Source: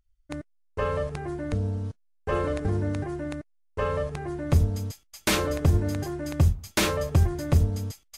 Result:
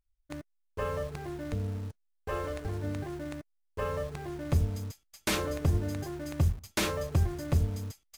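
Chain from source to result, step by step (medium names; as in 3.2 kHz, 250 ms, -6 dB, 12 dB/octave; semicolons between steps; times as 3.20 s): 1.88–2.84 s: dynamic bell 200 Hz, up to -8 dB, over -42 dBFS, Q 0.87; in parallel at -7 dB: bit crusher 6-bit; on the sum: trim -9 dB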